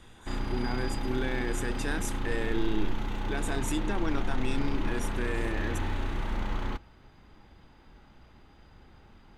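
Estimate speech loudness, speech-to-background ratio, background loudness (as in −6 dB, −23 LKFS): −35.0 LKFS, 0.5 dB, −35.5 LKFS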